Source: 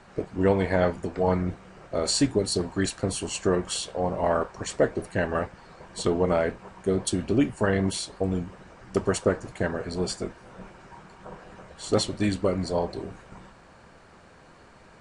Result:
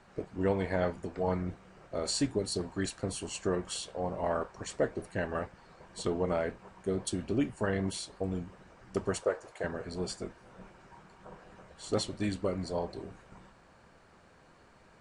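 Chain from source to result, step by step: 9.23–9.64 resonant low shelf 330 Hz -13.5 dB, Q 1.5; gain -7.5 dB

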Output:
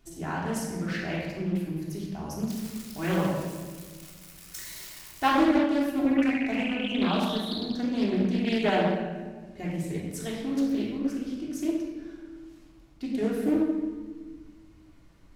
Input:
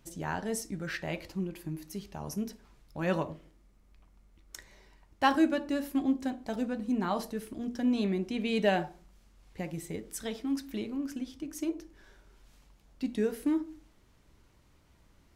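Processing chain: 2.5–5.29 switching spikes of -31.5 dBFS; 6.06–7.65 painted sound rise 1900–4200 Hz -40 dBFS; shoebox room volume 1600 m³, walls mixed, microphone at 3.3 m; Doppler distortion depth 0.39 ms; gain -2.5 dB

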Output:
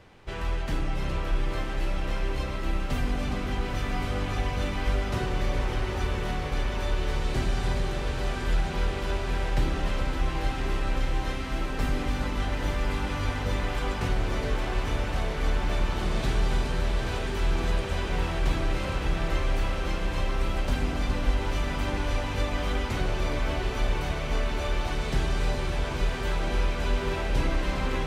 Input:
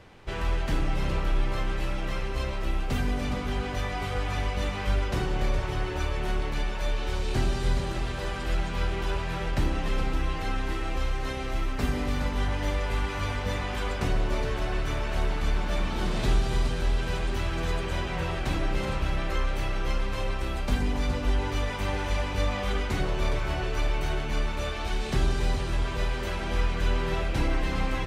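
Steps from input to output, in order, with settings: on a send: diffused feedback echo 0.92 s, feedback 76%, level -5.5 dB; on the sum: gain -2 dB

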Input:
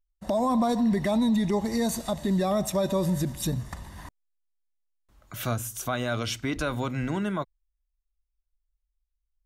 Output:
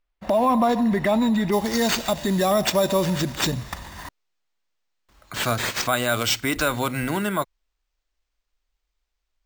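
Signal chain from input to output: tilt shelf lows -3 dB; careless resampling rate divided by 4×, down none, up hold; tone controls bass -4 dB, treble -13 dB, from 1.51 s treble 0 dB; gain +7.5 dB

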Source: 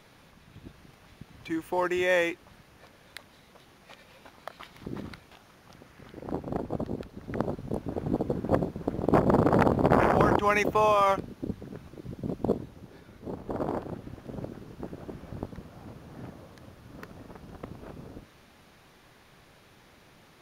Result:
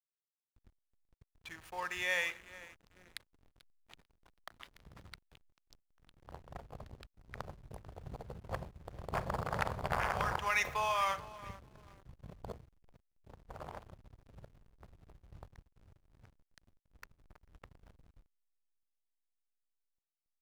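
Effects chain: passive tone stack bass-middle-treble 10-0-10; on a send: feedback echo 0.442 s, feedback 41%, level -16.5 dB; on the sum: Schroeder reverb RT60 0.57 s, combs from 30 ms, DRR 13 dB; backlash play -45 dBFS

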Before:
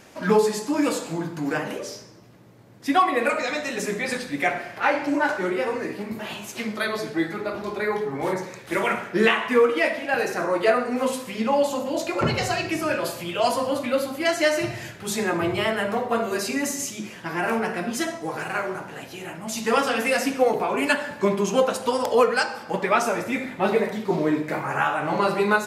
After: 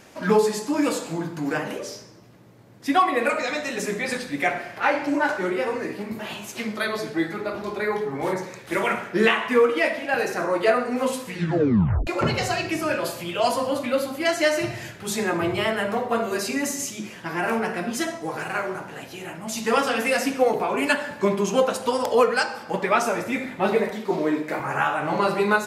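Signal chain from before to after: 11.25 tape stop 0.82 s; 23.9–24.6 HPF 220 Hz 12 dB/oct

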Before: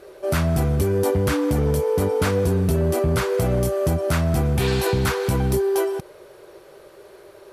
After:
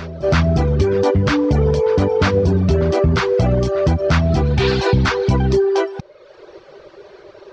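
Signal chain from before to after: steep low-pass 5800 Hz 36 dB/oct; reverse echo 0.355 s -16 dB; reverb removal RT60 0.88 s; gain +7 dB

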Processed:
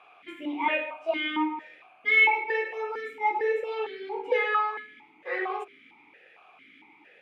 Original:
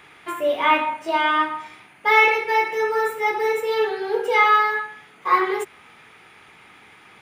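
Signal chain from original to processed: notches 50/100/150/200/250/300/350/400 Hz; vowel sequencer 4.4 Hz; gain +5.5 dB

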